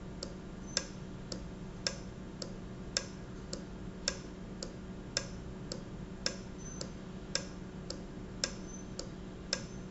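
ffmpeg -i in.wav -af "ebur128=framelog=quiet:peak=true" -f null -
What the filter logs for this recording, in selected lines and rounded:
Integrated loudness:
  I:         -41.2 LUFS
  Threshold: -51.1 LUFS
Loudness range:
  LRA:         1.3 LU
  Threshold: -61.2 LUFS
  LRA low:   -42.1 LUFS
  LRA high:  -40.7 LUFS
True peak:
  Peak:      -10.1 dBFS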